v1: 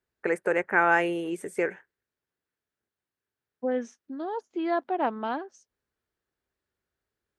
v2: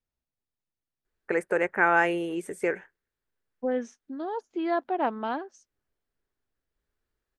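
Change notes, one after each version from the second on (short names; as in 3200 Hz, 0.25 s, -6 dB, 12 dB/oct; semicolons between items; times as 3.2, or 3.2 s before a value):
first voice: entry +1.05 s; master: remove HPF 75 Hz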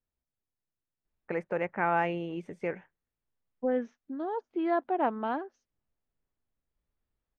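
first voice: add fifteen-band EQ 160 Hz +4 dB, 400 Hz -9 dB, 1600 Hz -9 dB, 6300 Hz +5 dB; master: add air absorption 300 m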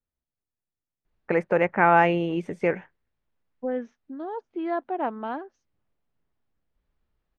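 first voice +9.5 dB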